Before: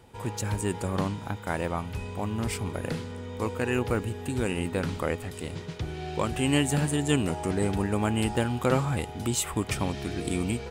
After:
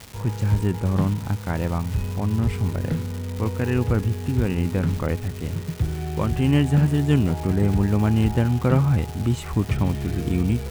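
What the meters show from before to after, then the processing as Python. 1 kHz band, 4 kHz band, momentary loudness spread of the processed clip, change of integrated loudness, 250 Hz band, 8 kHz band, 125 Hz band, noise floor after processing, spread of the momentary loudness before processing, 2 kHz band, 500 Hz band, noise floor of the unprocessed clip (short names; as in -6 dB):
0.0 dB, -2.5 dB, 8 LU, +6.5 dB, +6.0 dB, -7.0 dB, +10.0 dB, -33 dBFS, 9 LU, -0.5 dB, +1.5 dB, -40 dBFS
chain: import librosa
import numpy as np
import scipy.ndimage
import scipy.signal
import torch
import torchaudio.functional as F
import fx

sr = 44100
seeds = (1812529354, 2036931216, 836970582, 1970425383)

y = fx.bass_treble(x, sr, bass_db=11, treble_db=-14)
y = fx.dmg_crackle(y, sr, seeds[0], per_s=550.0, level_db=-30.0)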